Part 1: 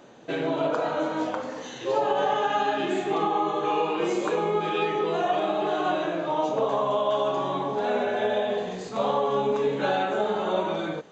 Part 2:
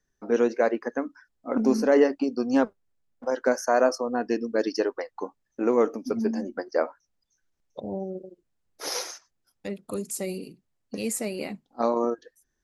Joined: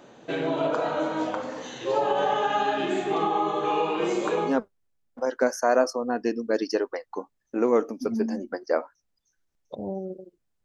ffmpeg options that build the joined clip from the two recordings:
ffmpeg -i cue0.wav -i cue1.wav -filter_complex "[0:a]apad=whole_dur=10.64,atrim=end=10.64,atrim=end=4.59,asetpts=PTS-STARTPTS[link_01];[1:a]atrim=start=2.48:end=8.69,asetpts=PTS-STARTPTS[link_02];[link_01][link_02]acrossfade=duration=0.16:curve1=tri:curve2=tri" out.wav

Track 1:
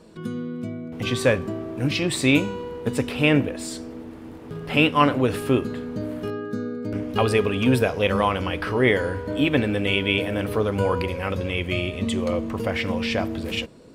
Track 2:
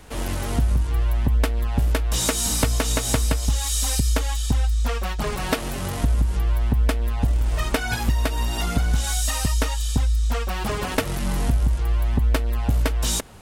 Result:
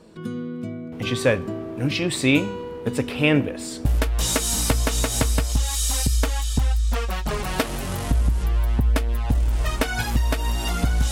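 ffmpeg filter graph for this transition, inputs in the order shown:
ffmpeg -i cue0.wav -i cue1.wav -filter_complex "[0:a]apad=whole_dur=11.11,atrim=end=11.11,atrim=end=3.852[link_01];[1:a]atrim=start=1.778:end=9.04[link_02];[link_01][link_02]acrossfade=duration=0.004:curve1=hsin:curve2=hsin" out.wav

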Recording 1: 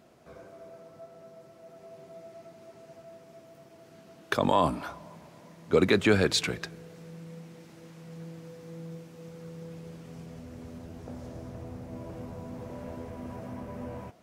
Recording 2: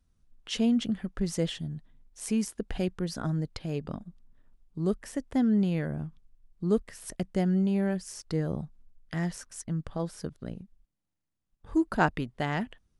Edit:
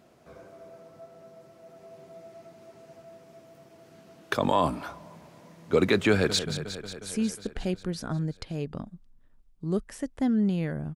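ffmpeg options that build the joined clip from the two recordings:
ffmpeg -i cue0.wav -i cue1.wav -filter_complex "[0:a]apad=whole_dur=10.95,atrim=end=10.95,atrim=end=6.392[link_01];[1:a]atrim=start=1.528:end=6.09[link_02];[link_01][link_02]acrossfade=duration=0.004:curve1=hsin:curve2=hsin,asplit=2[link_03][link_04];[link_04]afade=type=in:start_time=6.11:duration=0.01,afade=type=out:start_time=6.39:duration=0.01,aecho=0:1:180|360|540|720|900|1080|1260|1440|1620|1800|1980|2160:0.298538|0.223904|0.167928|0.125946|0.0944594|0.0708445|0.0531334|0.03985|0.0298875|0.0224157|0.0168117|0.0126088[link_05];[link_03][link_05]amix=inputs=2:normalize=0" out.wav

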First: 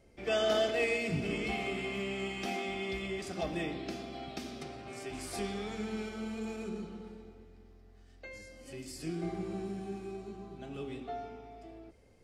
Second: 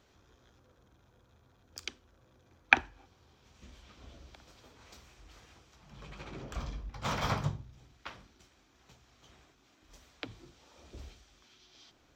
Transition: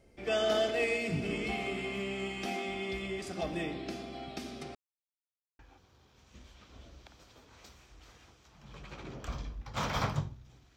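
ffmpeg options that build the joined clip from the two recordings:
ffmpeg -i cue0.wav -i cue1.wav -filter_complex "[0:a]apad=whole_dur=10.76,atrim=end=10.76,asplit=2[link_01][link_02];[link_01]atrim=end=4.75,asetpts=PTS-STARTPTS,afade=type=out:start_time=4.746:duration=0.004:curve=hsin[link_03];[link_02]atrim=start=4.75:end=5.59,asetpts=PTS-STARTPTS,volume=0[link_04];[1:a]atrim=start=2.87:end=8.04,asetpts=PTS-STARTPTS,afade=type=in:duration=0.004:curve=hsin[link_05];[link_03][link_04][link_05]concat=n=3:v=0:a=1" out.wav

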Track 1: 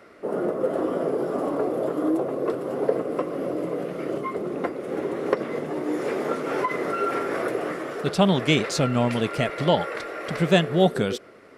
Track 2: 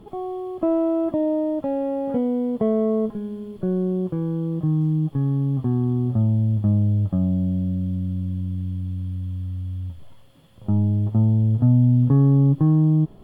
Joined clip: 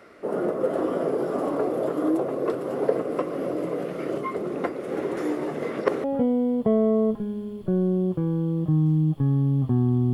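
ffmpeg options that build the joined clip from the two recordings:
ffmpeg -i cue0.wav -i cue1.wav -filter_complex "[0:a]apad=whole_dur=10.13,atrim=end=10.13,asplit=2[link_01][link_02];[link_01]atrim=end=5.172[link_03];[link_02]atrim=start=5.168:end=6.042,asetpts=PTS-STARTPTS,areverse[link_04];[1:a]atrim=start=1.988:end=6.08[link_05];[link_03][link_04]acrossfade=duration=0.004:curve1=hsin:curve2=hsin[link_06];[link_06][link_05]acrossfade=duration=0.004:curve1=hsin:curve2=hsin" out.wav

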